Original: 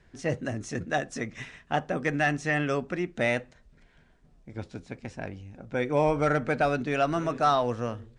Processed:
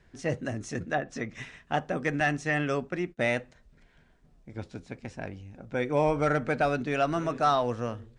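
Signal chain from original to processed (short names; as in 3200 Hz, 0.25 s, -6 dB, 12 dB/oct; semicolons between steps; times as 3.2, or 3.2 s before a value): 0.83–1.3 treble ducked by the level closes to 2100 Hz, closed at -24 dBFS; 2.2–3.33 gate -36 dBFS, range -25 dB; gain -1 dB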